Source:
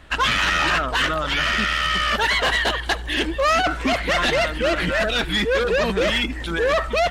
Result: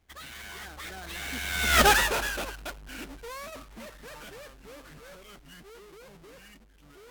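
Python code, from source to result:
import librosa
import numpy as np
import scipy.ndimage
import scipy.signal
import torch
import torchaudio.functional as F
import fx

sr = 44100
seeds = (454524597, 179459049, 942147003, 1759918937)

y = fx.halfwave_hold(x, sr)
y = fx.doppler_pass(y, sr, speed_mps=56, closest_m=4.5, pass_at_s=1.83)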